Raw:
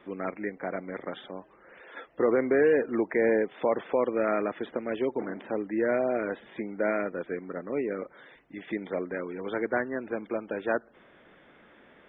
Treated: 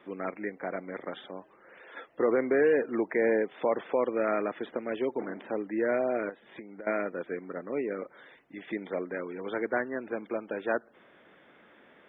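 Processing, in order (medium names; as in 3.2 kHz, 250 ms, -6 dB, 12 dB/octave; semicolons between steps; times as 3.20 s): high-pass 160 Hz 6 dB/octave; 6.29–6.87 s: compression 16:1, threshold -40 dBFS, peak gain reduction 17 dB; trim -1 dB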